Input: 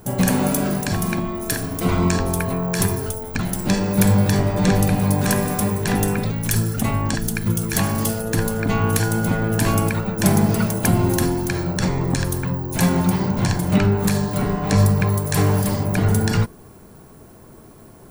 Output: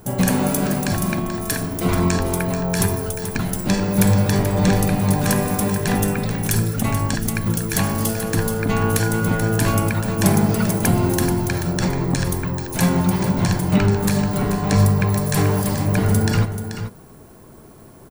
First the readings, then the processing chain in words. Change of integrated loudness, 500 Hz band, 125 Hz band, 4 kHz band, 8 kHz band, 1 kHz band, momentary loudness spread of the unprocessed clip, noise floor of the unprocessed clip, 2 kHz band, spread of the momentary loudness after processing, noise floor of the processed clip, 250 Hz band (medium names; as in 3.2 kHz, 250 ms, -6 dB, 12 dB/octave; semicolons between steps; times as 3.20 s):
+0.5 dB, +0.5 dB, +0.5 dB, +0.5 dB, +0.5 dB, +0.5 dB, 5 LU, -44 dBFS, +0.5 dB, 6 LU, -43 dBFS, +0.5 dB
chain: delay 434 ms -9.5 dB